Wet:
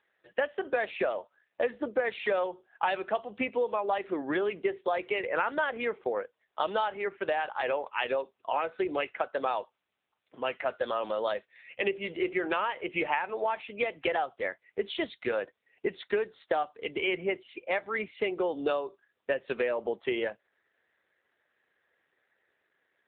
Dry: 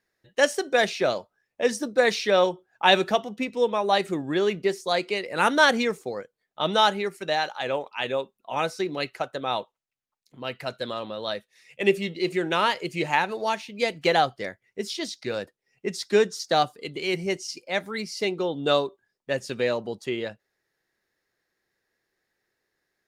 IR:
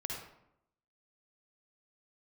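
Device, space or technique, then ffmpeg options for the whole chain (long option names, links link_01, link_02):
voicemail: -af "highpass=420,lowpass=2800,acompressor=threshold=-32dB:ratio=10,volume=7dB" -ar 8000 -c:a libopencore_amrnb -b:a 7950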